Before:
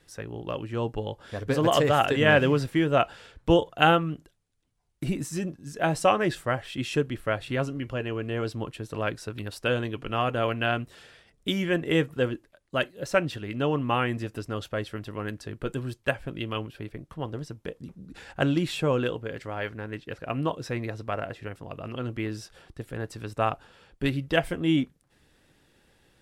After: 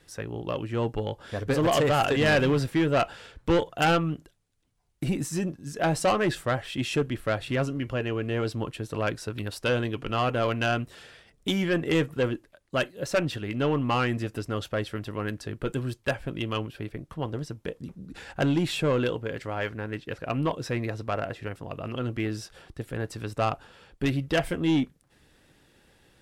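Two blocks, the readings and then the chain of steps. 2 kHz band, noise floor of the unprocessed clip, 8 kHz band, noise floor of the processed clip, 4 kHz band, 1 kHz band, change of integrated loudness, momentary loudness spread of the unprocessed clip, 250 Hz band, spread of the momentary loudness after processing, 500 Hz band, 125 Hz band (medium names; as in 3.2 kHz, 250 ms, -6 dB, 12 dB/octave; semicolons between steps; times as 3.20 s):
-1.0 dB, -66 dBFS, +2.5 dB, -64 dBFS, -0.5 dB, -1.5 dB, -0.5 dB, 15 LU, +0.5 dB, 12 LU, -0.5 dB, +1.0 dB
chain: Chebyshev shaper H 4 -24 dB, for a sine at -5.5 dBFS; saturation -19.5 dBFS, distortion -11 dB; trim +2.5 dB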